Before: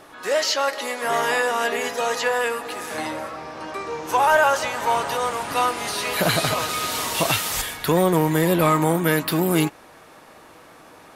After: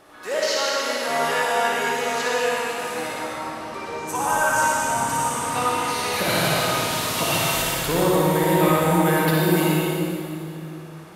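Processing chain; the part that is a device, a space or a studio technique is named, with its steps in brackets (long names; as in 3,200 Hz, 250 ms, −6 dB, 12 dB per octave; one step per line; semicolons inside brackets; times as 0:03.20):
0:03.98–0:05.31: octave-band graphic EQ 125/250/500/2,000/4,000/8,000 Hz +6/+5/−9/−5/−7/+12 dB
tunnel (flutter between parallel walls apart 9.8 metres, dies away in 0.65 s; convolution reverb RT60 2.6 s, pre-delay 62 ms, DRR −3 dB)
level −5.5 dB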